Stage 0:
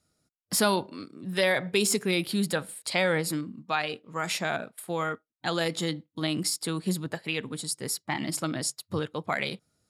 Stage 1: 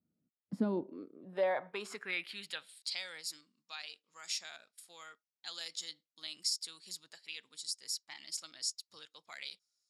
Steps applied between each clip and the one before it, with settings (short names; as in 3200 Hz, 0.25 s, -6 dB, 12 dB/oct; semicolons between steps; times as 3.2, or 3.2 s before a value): band-pass sweep 220 Hz -> 5500 Hz, 0.55–2.99; gain -1 dB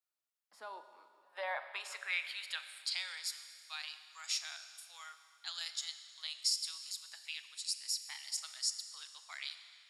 HPF 830 Hz 24 dB/oct; Schroeder reverb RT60 2.3 s, combs from 29 ms, DRR 9.5 dB; gain +1.5 dB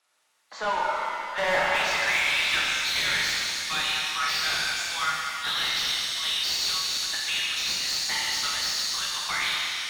nonlinear frequency compression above 3300 Hz 1.5:1; overdrive pedal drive 30 dB, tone 2500 Hz, clips at -21.5 dBFS; shimmer reverb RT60 2.1 s, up +7 st, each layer -8 dB, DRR -2.5 dB; gain +2.5 dB